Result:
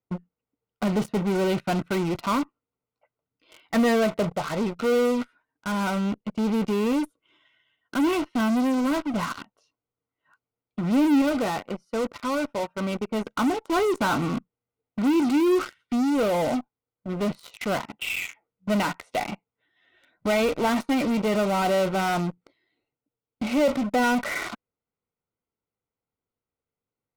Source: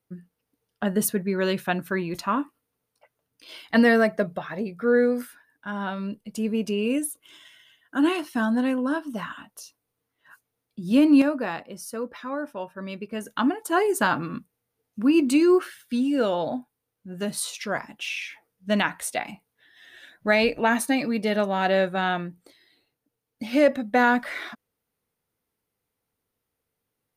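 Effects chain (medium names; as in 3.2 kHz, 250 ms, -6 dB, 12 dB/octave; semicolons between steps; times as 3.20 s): low-pass 2.2 kHz 12 dB/octave; in parallel at -4.5 dB: fuzz box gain 39 dB, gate -40 dBFS; on the sum: Butterworth band-stop 1.7 kHz, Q 6.2; trim -7.5 dB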